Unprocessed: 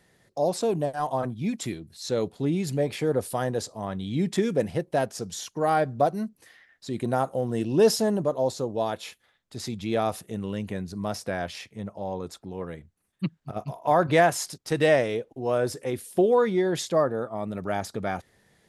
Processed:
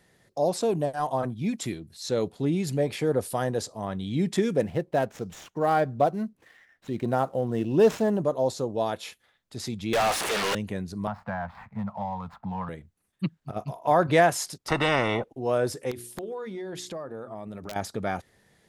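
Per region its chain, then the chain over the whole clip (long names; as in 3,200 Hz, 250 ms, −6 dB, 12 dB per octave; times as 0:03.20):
0:04.61–0:08.20: running median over 9 samples + hard clipping −11.5 dBFS + linearly interpolated sample-rate reduction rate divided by 2×
0:09.93–0:10.55: linear delta modulator 64 kbit/s, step −37 dBFS + high-pass filter 630 Hz + mid-hump overdrive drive 35 dB, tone 3,600 Hz, clips at −17 dBFS
0:11.07–0:12.69: running median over 15 samples + drawn EQ curve 220 Hz 0 dB, 340 Hz −27 dB, 890 Hz +8 dB, 6,600 Hz −18 dB + multiband upward and downward compressor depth 100%
0:14.68–0:15.24: Savitzky-Golay smoothing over 65 samples + every bin compressed towards the loudest bin 4 to 1
0:15.91–0:17.76: mains-hum notches 60/120/180/240/300/360/420 Hz + downward compressor 5 to 1, threshold −34 dBFS + wrap-around overflow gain 26 dB
whole clip: no processing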